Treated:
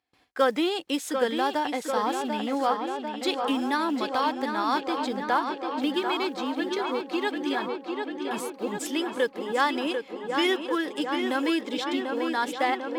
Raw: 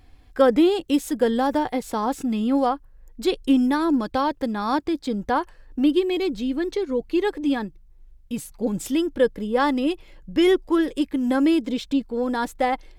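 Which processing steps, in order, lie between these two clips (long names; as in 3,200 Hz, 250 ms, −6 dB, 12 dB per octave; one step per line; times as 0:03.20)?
one scale factor per block 7 bits
noise gate with hold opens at −41 dBFS
meter weighting curve A
on a send: tape delay 744 ms, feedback 78%, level −6 dB, low-pass 4,500 Hz
on the sum: dynamic equaliser 460 Hz, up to −4 dB, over −27 dBFS, Q 0.83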